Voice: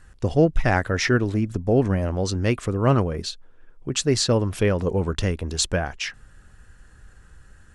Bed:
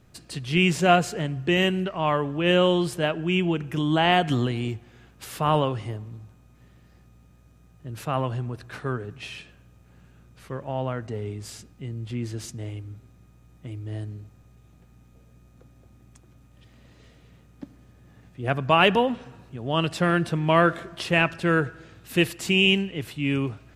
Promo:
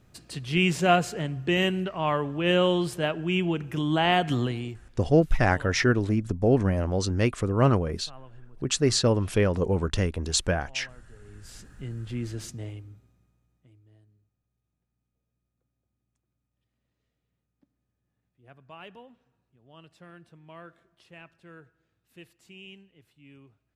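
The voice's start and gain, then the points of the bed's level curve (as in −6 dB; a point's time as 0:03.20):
4.75 s, −2.0 dB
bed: 0:04.51 −2.5 dB
0:05.29 −22 dB
0:11.18 −22 dB
0:11.63 −2 dB
0:12.61 −2 dB
0:14.02 −27.5 dB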